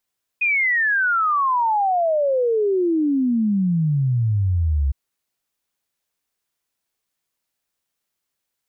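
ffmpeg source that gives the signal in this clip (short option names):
-f lavfi -i "aevalsrc='0.158*clip(min(t,4.51-t)/0.01,0,1)*sin(2*PI*2500*4.51/log(66/2500)*(exp(log(66/2500)*t/4.51)-1))':d=4.51:s=44100"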